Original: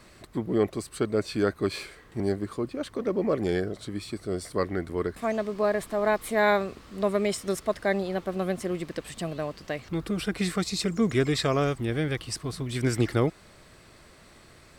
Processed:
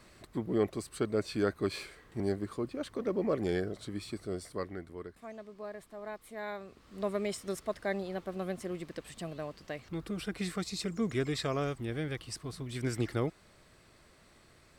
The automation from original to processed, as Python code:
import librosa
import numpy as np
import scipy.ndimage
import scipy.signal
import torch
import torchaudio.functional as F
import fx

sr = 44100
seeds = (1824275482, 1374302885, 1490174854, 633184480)

y = fx.gain(x, sr, db=fx.line((4.19, -5.0), (5.26, -18.0), (6.57, -18.0), (6.97, -8.0)))